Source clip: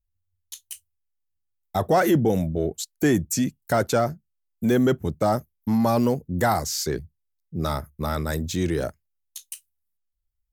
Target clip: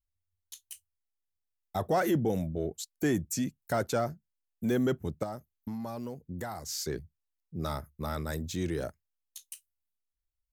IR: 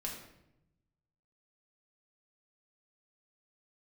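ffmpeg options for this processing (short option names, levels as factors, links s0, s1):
-filter_complex "[0:a]asettb=1/sr,asplit=3[s0][s1][s2];[s0]atrim=end=5.234[s3];[s1]atrim=start=5.23:end=6.69,asetpts=PTS-STARTPTS,afade=t=in:d=0.004:c=qsin,afade=t=out:st=1.456:d=0.004:c=qsin,acompressor=threshold=0.0447:ratio=6[s4];[s2]atrim=start=6.686[s5];[s3][s4]acrossfade=d=0.004:c1=hsin:c2=qsin[s6];[s6][s5]acrossfade=d=0.004:c1=qsin:c2=hsin,volume=0.398"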